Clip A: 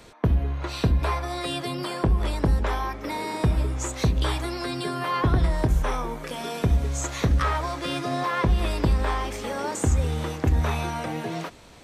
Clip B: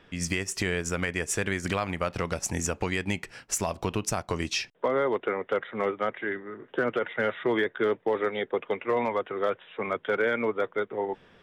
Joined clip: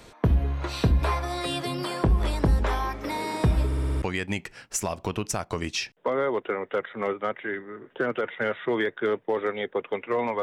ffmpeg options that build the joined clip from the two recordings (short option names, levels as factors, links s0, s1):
-filter_complex "[0:a]apad=whole_dur=10.42,atrim=end=10.42,asplit=6[s0][s1][s2][s3][s4][s5];[s0]atrim=end=3.722[s6];[s1]atrim=start=3.658:end=3.722[s7];[s2]atrim=start=3.658:end=3.722[s8];[s3]atrim=start=3.658:end=3.722[s9];[s4]atrim=start=3.658:end=3.722[s10];[s5]atrim=start=3.658:end=3.722[s11];[1:a]atrim=start=2.798:end=9.2[s12];[s6][s7]acrossfade=d=0.004:c1=hsin:c2=hsin[s13];[s13][s8]acrossfade=d=0.004:c1=hsin:c2=hsin[s14];[s14][s9]acrossfade=d=0.004:c1=hsin:c2=hsin[s15];[s15][s10]acrossfade=d=0.004:c1=hsin:c2=hsin[s16];[s16][s11]acrossfade=d=0.004:c1=hsin:c2=hsin[s17];[s17][s12]acrossfade=d=0.004:c1=hsin:c2=hsin"